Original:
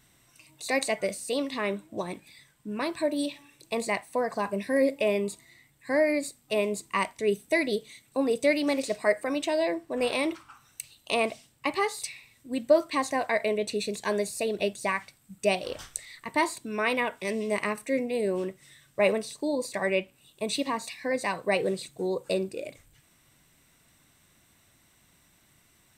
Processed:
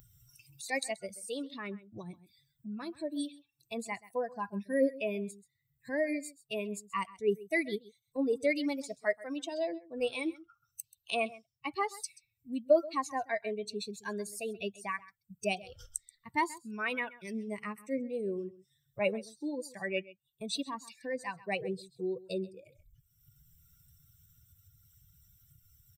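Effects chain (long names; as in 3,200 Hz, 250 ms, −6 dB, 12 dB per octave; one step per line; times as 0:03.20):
spectral dynamics exaggerated over time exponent 2
single-tap delay 131 ms −19.5 dB
upward compression, threshold −37 dBFS
level −1.5 dB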